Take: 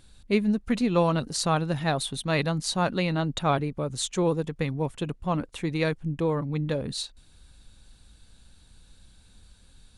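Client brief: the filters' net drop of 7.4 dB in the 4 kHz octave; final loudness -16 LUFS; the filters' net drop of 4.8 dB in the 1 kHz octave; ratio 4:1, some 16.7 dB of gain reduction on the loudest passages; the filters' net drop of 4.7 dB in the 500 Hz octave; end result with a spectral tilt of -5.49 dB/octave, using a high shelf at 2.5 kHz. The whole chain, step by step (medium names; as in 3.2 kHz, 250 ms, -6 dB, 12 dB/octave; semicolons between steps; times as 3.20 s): peaking EQ 500 Hz -4.5 dB; peaking EQ 1 kHz -3.5 dB; treble shelf 2.5 kHz -6.5 dB; peaking EQ 4 kHz -3 dB; compression 4:1, threshold -42 dBFS; trim +27.5 dB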